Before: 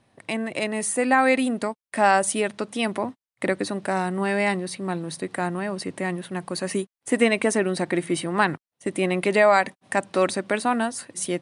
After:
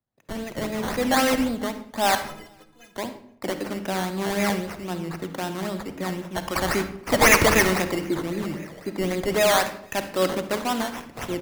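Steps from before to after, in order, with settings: 6.36–7.82 bell 2400 Hz +15 dB 2.8 oct; 8.33–8.85 spectral repair 440–2800 Hz after; in parallel at -1.5 dB: compressor, threshold -27 dBFS, peak gain reduction 19.5 dB; on the sum: decimation with a swept rate 14×, swing 60% 3.8 Hz; soft clip -10 dBFS, distortion -11 dB; 2.15–2.95 metallic resonator 150 Hz, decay 0.26 s, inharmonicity 0.03; echo 0.475 s -24 dB; on a send at -8 dB: reverb RT60 0.85 s, pre-delay 46 ms; on the sum: three-band expander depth 70%; gain -4 dB

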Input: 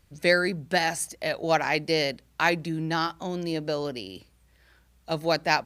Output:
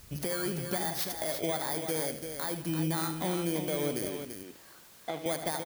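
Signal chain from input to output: FFT order left unsorted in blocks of 16 samples; compressor, threshold -36 dBFS, peak gain reduction 18.5 dB; limiter -28 dBFS, peak gain reduction 11 dB; 4.09–5.26 BPF 230–4000 Hz; added noise white -64 dBFS; tapped delay 76/170/251/339 ms -10.5/-18.5/-18/-7.5 dB; gain +7 dB

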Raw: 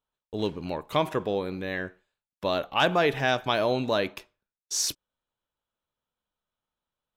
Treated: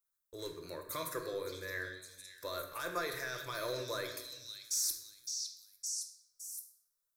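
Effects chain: pre-emphasis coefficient 0.9; limiter -28.5 dBFS, peak gain reduction 10.5 dB; in parallel at -8 dB: hard clip -39 dBFS, distortion -9 dB; on the sum: fixed phaser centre 790 Hz, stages 6; on a send: delay with a stepping band-pass 0.563 s, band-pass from 4200 Hz, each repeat 0.7 oct, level -1 dB; on the sum: shoebox room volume 470 m³, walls mixed, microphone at 0.81 m; gain +4 dB

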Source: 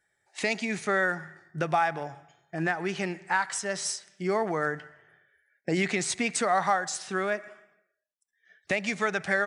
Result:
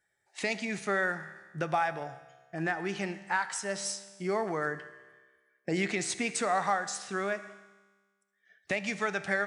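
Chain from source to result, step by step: resonator 66 Hz, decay 1.5 s, harmonics all, mix 60%; gain +3.5 dB

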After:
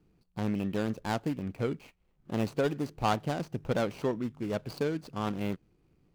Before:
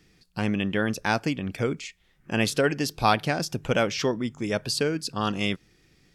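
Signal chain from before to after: median filter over 25 samples; gain -4.5 dB

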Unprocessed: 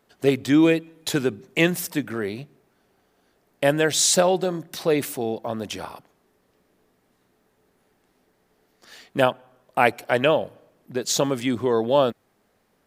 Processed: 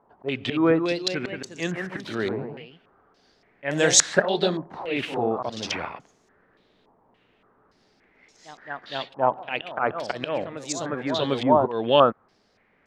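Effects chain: auto swell 0.231 s; echoes that change speed 0.242 s, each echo +1 st, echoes 3, each echo -6 dB; stepped low-pass 3.5 Hz 940–6600 Hz

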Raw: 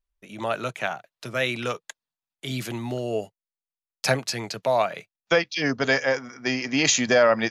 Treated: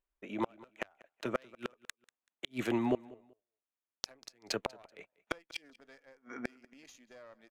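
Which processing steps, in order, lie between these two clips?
Wiener smoothing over 9 samples; resonant low shelf 200 Hz -9 dB, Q 1.5; added harmonics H 4 -18 dB, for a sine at -5.5 dBFS; flipped gate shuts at -20 dBFS, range -38 dB; feedback echo 0.191 s, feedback 26%, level -22 dB; gain +1 dB

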